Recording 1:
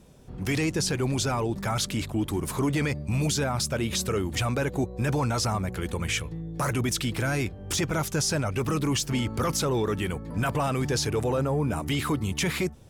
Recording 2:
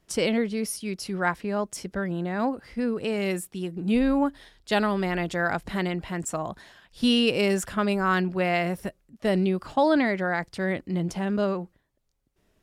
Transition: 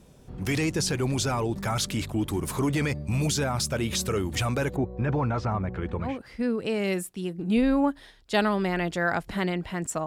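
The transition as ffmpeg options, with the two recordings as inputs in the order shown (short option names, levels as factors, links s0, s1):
-filter_complex "[0:a]asplit=3[s0][s1][s2];[s0]afade=t=out:st=4.75:d=0.02[s3];[s1]lowpass=1900,afade=t=in:st=4.75:d=0.02,afade=t=out:st=6.19:d=0.02[s4];[s2]afade=t=in:st=6.19:d=0.02[s5];[s3][s4][s5]amix=inputs=3:normalize=0,apad=whole_dur=10.06,atrim=end=10.06,atrim=end=6.19,asetpts=PTS-STARTPTS[s6];[1:a]atrim=start=2.37:end=6.44,asetpts=PTS-STARTPTS[s7];[s6][s7]acrossfade=d=0.2:c1=tri:c2=tri"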